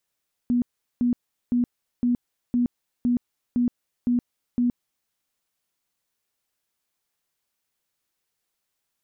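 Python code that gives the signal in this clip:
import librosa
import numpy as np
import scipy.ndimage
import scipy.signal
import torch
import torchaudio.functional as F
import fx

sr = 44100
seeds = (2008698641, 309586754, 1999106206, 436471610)

y = fx.tone_burst(sr, hz=243.0, cycles=29, every_s=0.51, bursts=9, level_db=-18.0)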